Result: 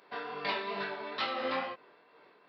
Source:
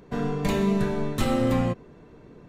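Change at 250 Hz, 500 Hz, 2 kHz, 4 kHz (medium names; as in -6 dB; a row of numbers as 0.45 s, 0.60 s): -21.0 dB, -10.5 dB, 0.0 dB, 0.0 dB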